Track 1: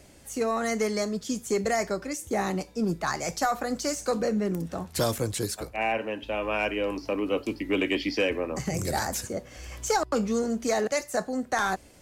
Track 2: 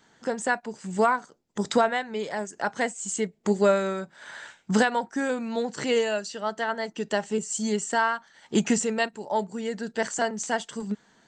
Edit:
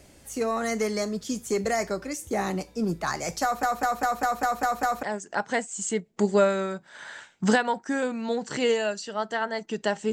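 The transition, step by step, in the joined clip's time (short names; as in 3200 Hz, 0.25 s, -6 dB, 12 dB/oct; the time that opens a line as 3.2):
track 1
3.43 stutter in place 0.20 s, 8 plays
5.03 switch to track 2 from 2.3 s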